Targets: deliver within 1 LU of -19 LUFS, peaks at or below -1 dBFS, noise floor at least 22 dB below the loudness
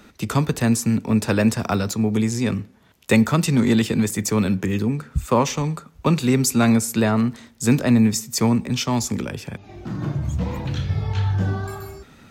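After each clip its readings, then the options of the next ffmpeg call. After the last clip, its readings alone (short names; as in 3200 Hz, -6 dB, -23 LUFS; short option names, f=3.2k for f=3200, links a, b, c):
loudness -21.0 LUFS; peak -4.5 dBFS; loudness target -19.0 LUFS
-> -af "volume=2dB"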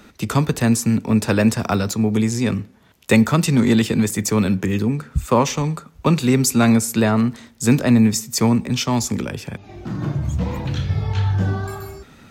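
loudness -19.0 LUFS; peak -2.5 dBFS; noise floor -49 dBFS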